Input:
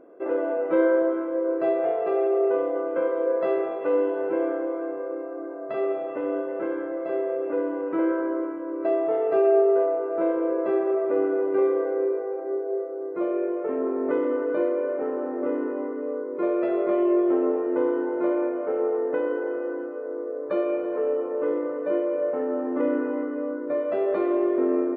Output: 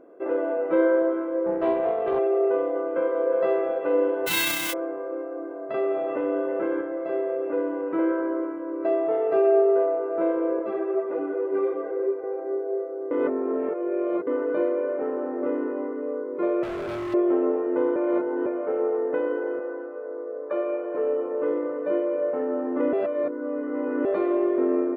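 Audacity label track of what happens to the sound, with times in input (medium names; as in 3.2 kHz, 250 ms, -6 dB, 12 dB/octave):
1.460000	2.190000	loudspeaker Doppler distortion depth 0.18 ms
2.780000	3.420000	echo throw 360 ms, feedback 70%, level -7 dB
4.260000	4.720000	formants flattened exponent 0.1
5.740000	6.810000	level flattener amount 50%
10.590000	12.240000	three-phase chorus
13.110000	14.270000	reverse
16.630000	17.140000	hard clipper -29 dBFS
17.960000	18.460000	reverse
19.590000	20.950000	band-pass 400–2400 Hz
22.930000	24.050000	reverse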